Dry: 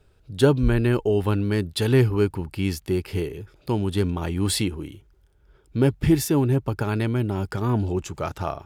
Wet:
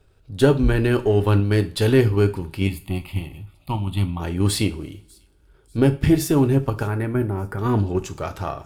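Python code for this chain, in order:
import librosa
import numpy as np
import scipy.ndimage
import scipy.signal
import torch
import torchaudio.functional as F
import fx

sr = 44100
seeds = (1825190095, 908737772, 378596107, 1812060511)

p1 = np.where(x < 0.0, 10.0 ** (-3.0 / 20.0) * x, x)
p2 = fx.band_shelf(p1, sr, hz=4500.0, db=-15.5, octaves=1.7, at=(6.87, 7.59))
p3 = fx.level_steps(p2, sr, step_db=24)
p4 = p2 + F.gain(torch.from_numpy(p3), -2.0).numpy()
p5 = fx.fixed_phaser(p4, sr, hz=1600.0, stages=6, at=(2.67, 4.2))
p6 = p5 + fx.echo_wet_highpass(p5, sr, ms=594, feedback_pct=44, hz=5400.0, wet_db=-23.0, dry=0)
y = fx.rev_double_slope(p6, sr, seeds[0], early_s=0.32, late_s=1.8, knee_db=-27, drr_db=7.5)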